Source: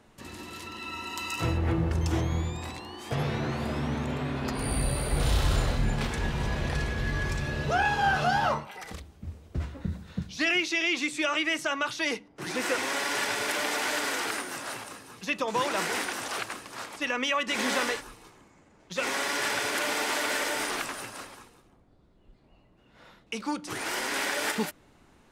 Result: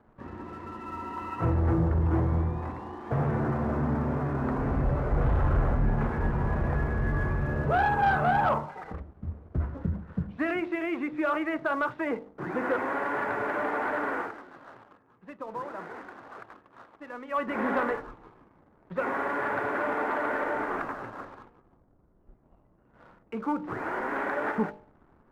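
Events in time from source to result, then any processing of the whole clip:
0:14.19–0:17.41: duck −11.5 dB, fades 0.13 s
whole clip: low-pass filter 1,500 Hz 24 dB per octave; hum removal 50.66 Hz, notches 18; leveller curve on the samples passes 1

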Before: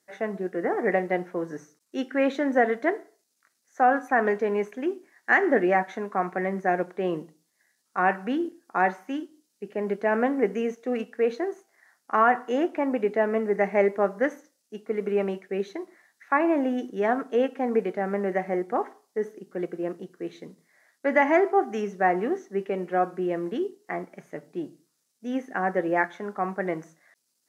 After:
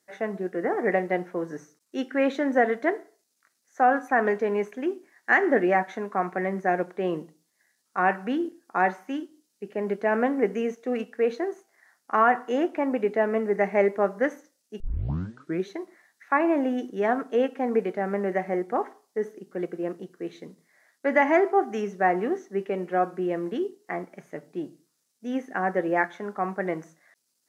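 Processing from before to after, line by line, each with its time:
0:14.80: tape start 0.86 s

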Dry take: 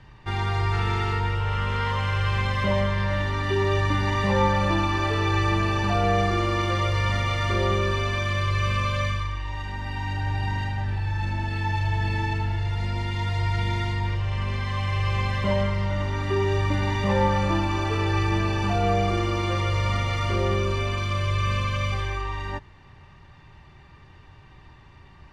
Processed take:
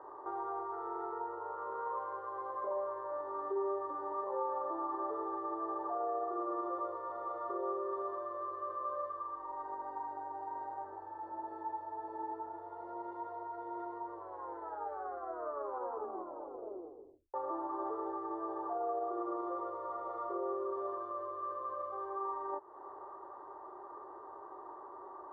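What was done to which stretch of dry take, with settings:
0:14.12: tape stop 3.22 s
whole clip: downward compressor 4 to 1, threshold −40 dBFS; brickwall limiter −33.5 dBFS; elliptic band-pass filter 360–1,200 Hz, stop band 40 dB; level +9.5 dB

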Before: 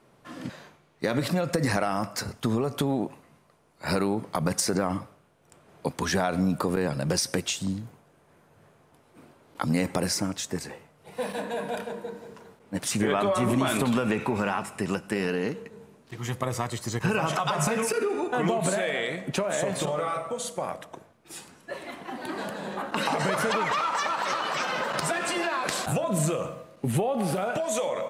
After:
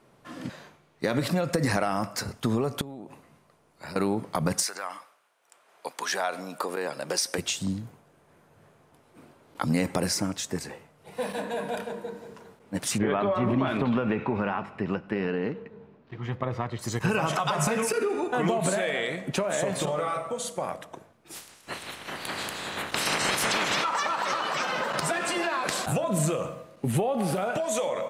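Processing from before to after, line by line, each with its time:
0:02.81–0:03.96: downward compressor 10 to 1, threshold −36 dBFS
0:04.62–0:07.37: high-pass filter 1,200 Hz → 370 Hz
0:12.98–0:16.79: high-frequency loss of the air 320 metres
0:21.34–0:23.83: ceiling on every frequency bin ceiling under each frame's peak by 23 dB

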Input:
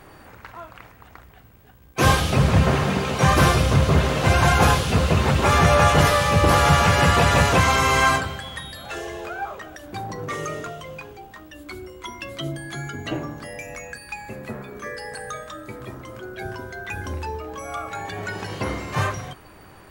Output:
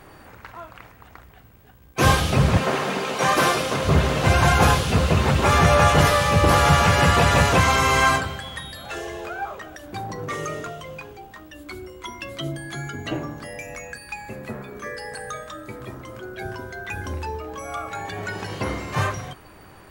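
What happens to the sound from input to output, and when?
0:02.57–0:03.85: high-pass filter 280 Hz

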